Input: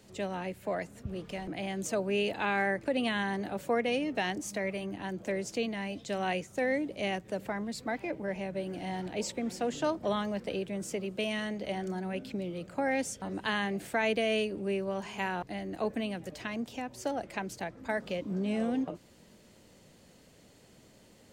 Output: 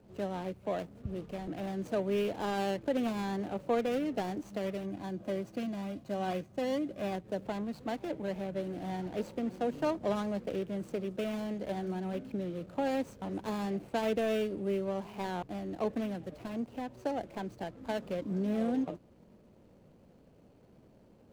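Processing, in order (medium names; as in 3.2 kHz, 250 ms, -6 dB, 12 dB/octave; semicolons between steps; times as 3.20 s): median filter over 25 samples; 4.83–7.15 s: comb of notches 450 Hz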